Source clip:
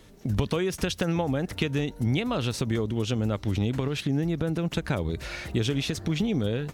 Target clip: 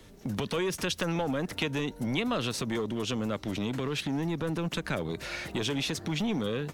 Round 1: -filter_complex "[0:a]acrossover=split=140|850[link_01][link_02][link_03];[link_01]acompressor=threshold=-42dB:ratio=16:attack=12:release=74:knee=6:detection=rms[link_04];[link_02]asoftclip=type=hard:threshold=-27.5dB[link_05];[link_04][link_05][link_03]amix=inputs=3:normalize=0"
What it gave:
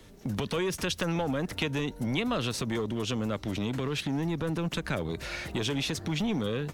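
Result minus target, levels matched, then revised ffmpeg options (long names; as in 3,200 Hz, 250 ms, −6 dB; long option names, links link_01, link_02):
downward compressor: peak gain reduction −7.5 dB
-filter_complex "[0:a]acrossover=split=140|850[link_01][link_02][link_03];[link_01]acompressor=threshold=-50dB:ratio=16:attack=12:release=74:knee=6:detection=rms[link_04];[link_02]asoftclip=type=hard:threshold=-27.5dB[link_05];[link_04][link_05][link_03]amix=inputs=3:normalize=0"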